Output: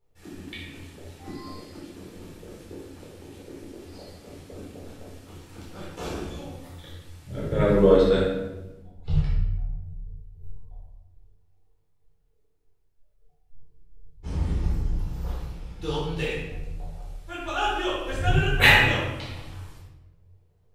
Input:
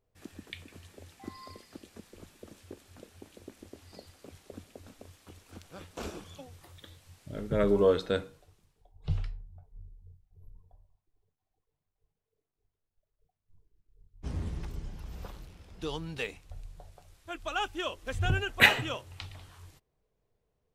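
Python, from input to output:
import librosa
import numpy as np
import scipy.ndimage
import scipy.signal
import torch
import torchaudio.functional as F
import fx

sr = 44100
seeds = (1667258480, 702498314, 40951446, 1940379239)

y = fx.peak_eq(x, sr, hz=2700.0, db=-4.5, octaves=1.6, at=(14.61, 15.29))
y = fx.room_shoebox(y, sr, seeds[0], volume_m3=460.0, walls='mixed', distance_m=4.2)
y = y * 10.0 ** (-3.5 / 20.0)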